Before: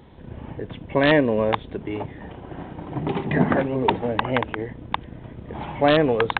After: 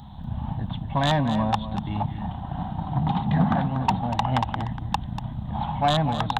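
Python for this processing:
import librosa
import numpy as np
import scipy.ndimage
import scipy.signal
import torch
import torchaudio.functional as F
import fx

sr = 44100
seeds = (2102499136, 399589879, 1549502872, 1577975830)

p1 = fx.curve_eq(x, sr, hz=(210.0, 440.0, 770.0, 2300.0, 3900.0), db=(0, -30, 2, -17, 3))
p2 = fx.rider(p1, sr, range_db=4, speed_s=0.5)
p3 = p1 + F.gain(torch.from_numpy(p2), -0.5).numpy()
p4 = 10.0 ** (-13.0 / 20.0) * np.tanh(p3 / 10.0 ** (-13.0 / 20.0))
y = p4 + fx.echo_single(p4, sr, ms=240, db=-11.0, dry=0)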